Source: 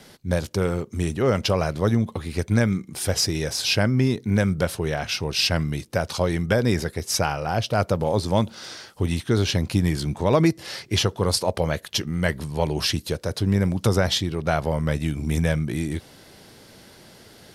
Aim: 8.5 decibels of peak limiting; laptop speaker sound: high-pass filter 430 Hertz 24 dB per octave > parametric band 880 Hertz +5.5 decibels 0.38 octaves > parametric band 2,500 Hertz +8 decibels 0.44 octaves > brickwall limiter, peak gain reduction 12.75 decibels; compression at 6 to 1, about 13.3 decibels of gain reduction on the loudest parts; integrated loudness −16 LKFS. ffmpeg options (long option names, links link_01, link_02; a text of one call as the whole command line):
ffmpeg -i in.wav -af "acompressor=threshold=-30dB:ratio=6,alimiter=level_in=1dB:limit=-24dB:level=0:latency=1,volume=-1dB,highpass=frequency=430:width=0.5412,highpass=frequency=430:width=1.3066,equalizer=frequency=880:width_type=o:width=0.38:gain=5.5,equalizer=frequency=2500:width_type=o:width=0.44:gain=8,volume=28dB,alimiter=limit=-5.5dB:level=0:latency=1" out.wav